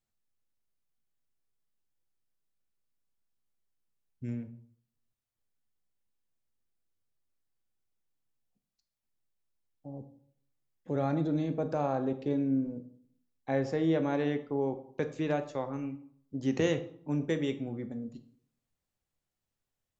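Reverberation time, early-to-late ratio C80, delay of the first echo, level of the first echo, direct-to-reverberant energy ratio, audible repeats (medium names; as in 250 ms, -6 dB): 0.60 s, 16.0 dB, no echo, no echo, 8.0 dB, no echo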